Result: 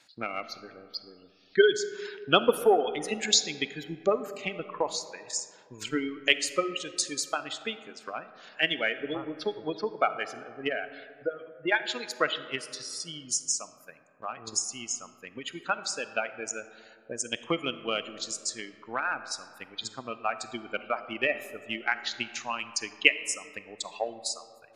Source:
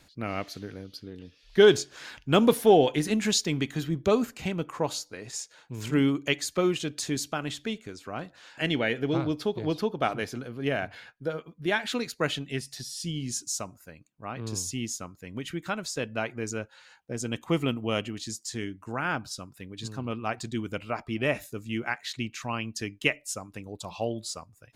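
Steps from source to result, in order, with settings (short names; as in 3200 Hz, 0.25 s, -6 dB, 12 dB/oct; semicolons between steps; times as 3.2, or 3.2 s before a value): HPF 920 Hz 6 dB/oct; spectral gate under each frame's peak -15 dB strong; transient shaper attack +8 dB, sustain -3 dB; reverb RT60 2.4 s, pre-delay 5 ms, DRR 12 dB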